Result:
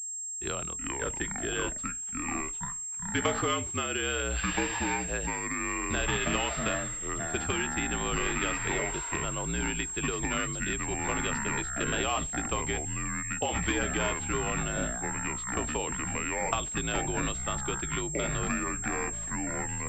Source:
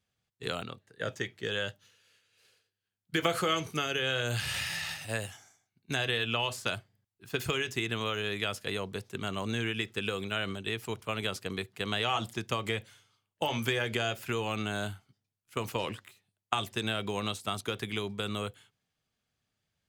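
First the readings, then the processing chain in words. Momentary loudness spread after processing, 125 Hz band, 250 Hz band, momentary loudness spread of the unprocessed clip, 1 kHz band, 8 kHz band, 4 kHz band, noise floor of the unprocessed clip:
4 LU, +1.5 dB, +4.0 dB, 8 LU, +3.5 dB, +16.5 dB, -3.5 dB, under -85 dBFS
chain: ever faster or slower copies 235 ms, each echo -5 st, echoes 2; frequency shift -55 Hz; class-D stage that switches slowly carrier 7.5 kHz

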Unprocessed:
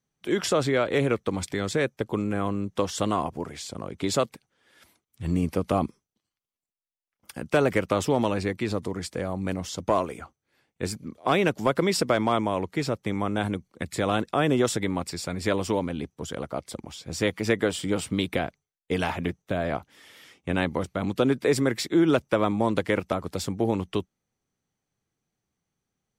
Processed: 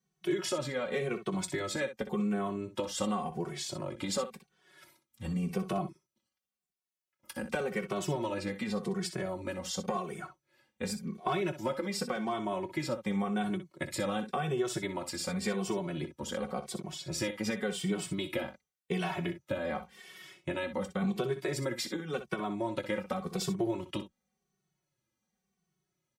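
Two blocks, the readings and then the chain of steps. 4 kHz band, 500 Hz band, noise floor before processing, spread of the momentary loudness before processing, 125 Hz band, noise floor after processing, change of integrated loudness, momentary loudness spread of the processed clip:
-6.0 dB, -8.5 dB, under -85 dBFS, 11 LU, -8.0 dB, under -85 dBFS, -8.0 dB, 6 LU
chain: high-pass 46 Hz; comb 5.4 ms, depth 71%; compression 6:1, threshold -27 dBFS, peak gain reduction 13 dB; on a send: early reflections 20 ms -15 dB, 62 ms -11.5 dB; on the sum: endless flanger 2.2 ms -0.9 Hz

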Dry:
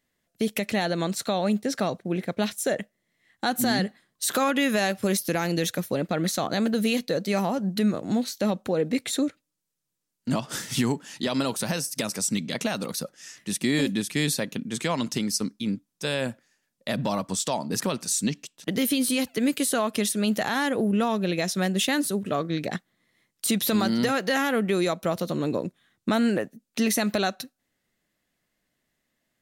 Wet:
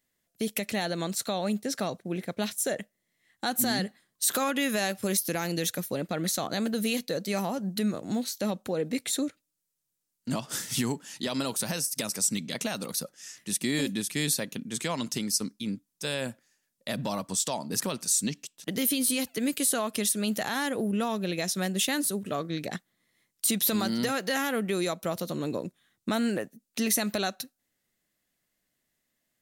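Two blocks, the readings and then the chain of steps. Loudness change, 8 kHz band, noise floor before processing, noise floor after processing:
-3.0 dB, +1.5 dB, -79 dBFS, -81 dBFS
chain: treble shelf 5.5 kHz +9 dB; trim -5 dB

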